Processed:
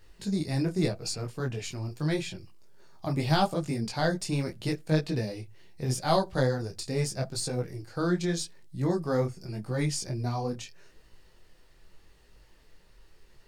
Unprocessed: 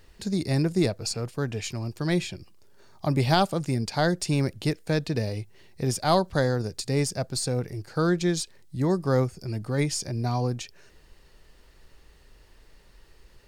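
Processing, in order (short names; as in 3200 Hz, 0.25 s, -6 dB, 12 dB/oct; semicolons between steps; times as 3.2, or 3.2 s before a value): on a send at -18 dB: reverb RT60 0.25 s, pre-delay 5 ms; on the sum: detuned doubles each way 28 cents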